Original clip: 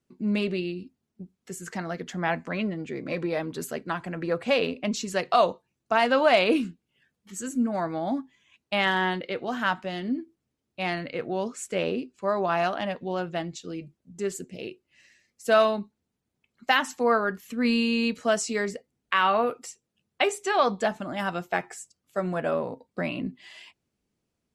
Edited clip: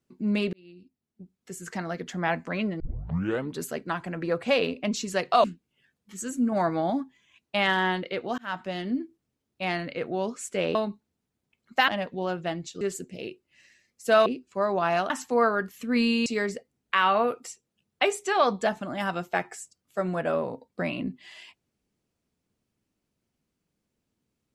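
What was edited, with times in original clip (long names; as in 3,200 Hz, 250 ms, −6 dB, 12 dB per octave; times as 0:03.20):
0:00.53–0:01.76: fade in
0:02.80: tape start 0.73 s
0:05.44–0:06.62: remove
0:07.70–0:08.08: clip gain +3.5 dB
0:09.56–0:09.85: fade in
0:11.93–0:12.77: swap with 0:15.66–0:16.79
0:13.70–0:14.21: remove
0:17.95–0:18.45: remove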